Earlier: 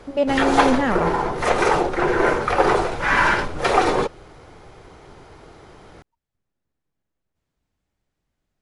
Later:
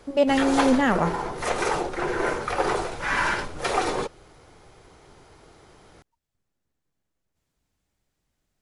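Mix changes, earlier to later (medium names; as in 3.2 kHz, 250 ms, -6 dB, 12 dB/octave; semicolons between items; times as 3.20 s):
background -7.5 dB; master: add treble shelf 5 kHz +10 dB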